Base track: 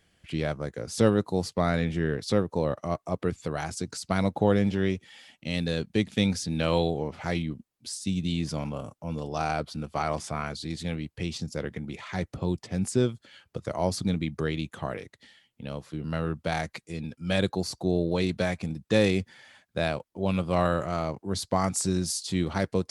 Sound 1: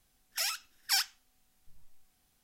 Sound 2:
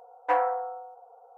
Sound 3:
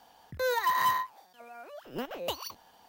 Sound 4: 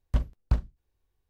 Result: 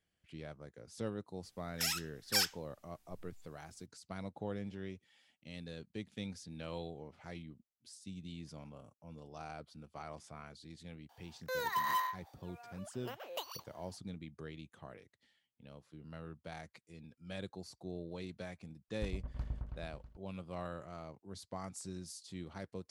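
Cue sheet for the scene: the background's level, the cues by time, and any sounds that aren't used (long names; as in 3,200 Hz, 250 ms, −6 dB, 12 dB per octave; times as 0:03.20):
base track −18.5 dB
0:01.43: mix in 1 −2.5 dB
0:11.09: mix in 3 −7 dB + high-pass filter 480 Hz
0:18.88: mix in 4 −17 dB + echo whose low-pass opens from repeat to repeat 108 ms, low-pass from 750 Hz, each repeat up 1 octave, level 0 dB
not used: 2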